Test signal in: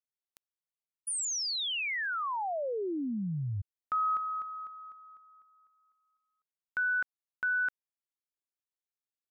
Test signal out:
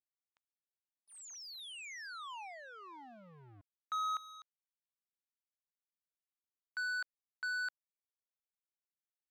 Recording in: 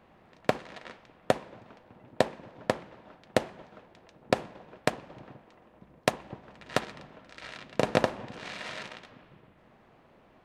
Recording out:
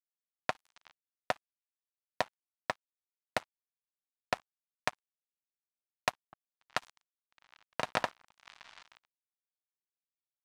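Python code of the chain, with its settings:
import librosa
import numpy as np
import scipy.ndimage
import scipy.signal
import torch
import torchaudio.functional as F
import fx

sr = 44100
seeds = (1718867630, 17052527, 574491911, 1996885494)

y = np.sign(x) * np.maximum(np.abs(x) - 10.0 ** (-34.0 / 20.0), 0.0)
y = fx.low_shelf_res(y, sr, hz=630.0, db=-9.5, q=1.5)
y = fx.env_lowpass(y, sr, base_hz=2800.0, full_db=-36.0)
y = F.gain(torch.from_numpy(y), -3.0).numpy()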